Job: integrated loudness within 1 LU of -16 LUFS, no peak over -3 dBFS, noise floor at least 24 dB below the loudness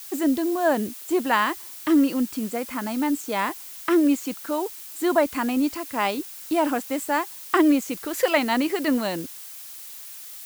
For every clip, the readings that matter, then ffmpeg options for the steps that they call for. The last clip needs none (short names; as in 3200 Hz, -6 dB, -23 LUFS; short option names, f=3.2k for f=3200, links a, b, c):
noise floor -40 dBFS; noise floor target -48 dBFS; loudness -24.0 LUFS; peak -6.5 dBFS; loudness target -16.0 LUFS
-> -af "afftdn=nr=8:nf=-40"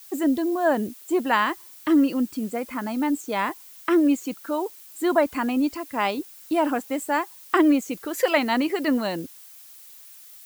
noise floor -47 dBFS; noise floor target -48 dBFS
-> -af "afftdn=nr=6:nf=-47"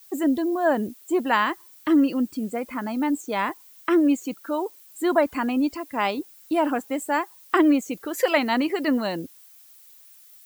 noise floor -51 dBFS; loudness -24.0 LUFS; peak -6.5 dBFS; loudness target -16.0 LUFS
-> -af "volume=8dB,alimiter=limit=-3dB:level=0:latency=1"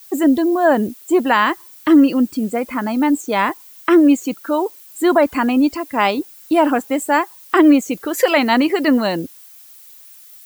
loudness -16.5 LUFS; peak -3.0 dBFS; noise floor -43 dBFS